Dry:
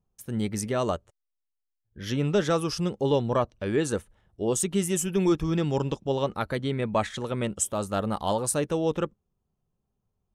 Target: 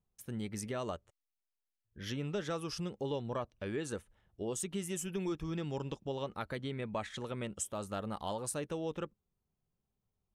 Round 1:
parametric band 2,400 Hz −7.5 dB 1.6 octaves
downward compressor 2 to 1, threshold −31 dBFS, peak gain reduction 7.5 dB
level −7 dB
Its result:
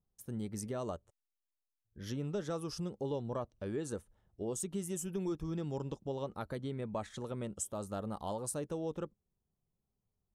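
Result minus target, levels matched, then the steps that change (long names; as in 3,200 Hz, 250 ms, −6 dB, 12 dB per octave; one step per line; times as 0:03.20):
2,000 Hz band −7.0 dB
change: parametric band 2,400 Hz +3 dB 1.6 octaves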